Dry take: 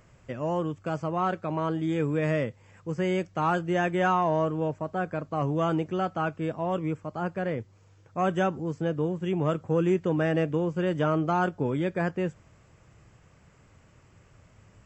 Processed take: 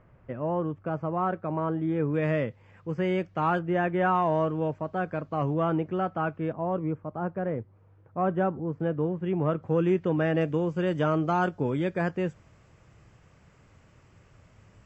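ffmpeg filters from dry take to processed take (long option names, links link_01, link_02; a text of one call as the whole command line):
ffmpeg -i in.wav -af "asetnsamples=nb_out_samples=441:pad=0,asendcmd='2.14 lowpass f 3300;3.59 lowpass f 2100;4.15 lowpass f 4000;5.54 lowpass f 2200;6.53 lowpass f 1300;8.8 lowpass f 2000;9.63 lowpass f 3800;10.41 lowpass f 7000',lowpass=1600" out.wav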